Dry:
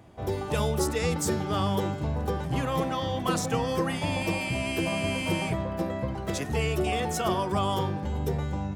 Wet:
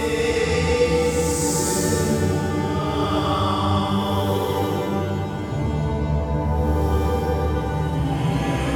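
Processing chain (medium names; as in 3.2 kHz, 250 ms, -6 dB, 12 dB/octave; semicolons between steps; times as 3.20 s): Paulstretch 5.2×, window 0.25 s, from 0.94 s; FDN reverb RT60 3.4 s, high-frequency decay 0.65×, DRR 2.5 dB; trim +4.5 dB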